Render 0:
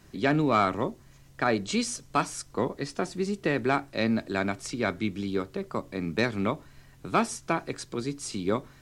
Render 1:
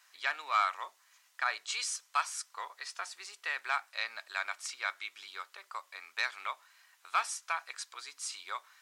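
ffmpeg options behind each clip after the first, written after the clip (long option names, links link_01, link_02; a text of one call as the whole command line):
ffmpeg -i in.wav -af "highpass=frequency=1000:width=0.5412,highpass=frequency=1000:width=1.3066,volume=-2dB" out.wav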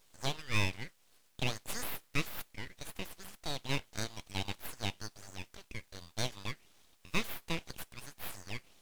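ffmpeg -i in.wav -af "aeval=exprs='abs(val(0))':channel_layout=same" out.wav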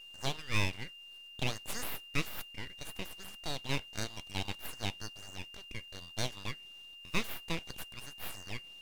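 ffmpeg -i in.wav -af "aeval=exprs='val(0)+0.00355*sin(2*PI*2800*n/s)':channel_layout=same" out.wav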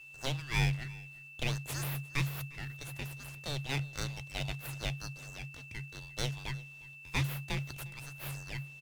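ffmpeg -i in.wav -af "aecho=1:1:354:0.0794,afreqshift=-140" out.wav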